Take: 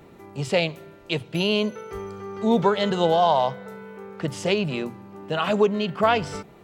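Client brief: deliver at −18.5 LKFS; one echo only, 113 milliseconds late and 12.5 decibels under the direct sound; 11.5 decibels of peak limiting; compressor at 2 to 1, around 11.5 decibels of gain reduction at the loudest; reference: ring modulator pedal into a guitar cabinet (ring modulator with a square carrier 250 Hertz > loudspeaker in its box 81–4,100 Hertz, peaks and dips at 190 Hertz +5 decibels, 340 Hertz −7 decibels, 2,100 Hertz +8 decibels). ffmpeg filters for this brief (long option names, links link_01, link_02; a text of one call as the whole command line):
ffmpeg -i in.wav -af "acompressor=threshold=-36dB:ratio=2,alimiter=level_in=4dB:limit=-24dB:level=0:latency=1,volume=-4dB,aecho=1:1:113:0.237,aeval=exprs='val(0)*sgn(sin(2*PI*250*n/s))':channel_layout=same,highpass=81,equalizer=frequency=190:width_type=q:width=4:gain=5,equalizer=frequency=340:width_type=q:width=4:gain=-7,equalizer=frequency=2100:width_type=q:width=4:gain=8,lowpass=frequency=4100:width=0.5412,lowpass=frequency=4100:width=1.3066,volume=19.5dB" out.wav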